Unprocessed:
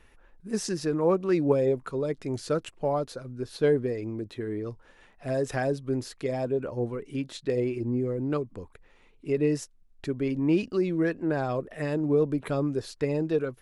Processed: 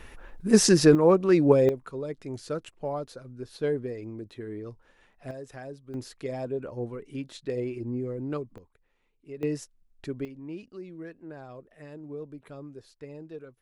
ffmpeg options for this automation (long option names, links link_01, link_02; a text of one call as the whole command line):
ffmpeg -i in.wav -af "asetnsamples=nb_out_samples=441:pad=0,asendcmd='0.95 volume volume 4dB;1.69 volume volume -5dB;5.31 volume volume -13.5dB;5.94 volume volume -4dB;8.58 volume volume -14dB;9.43 volume volume -4dB;10.25 volume volume -15.5dB',volume=11.5dB" out.wav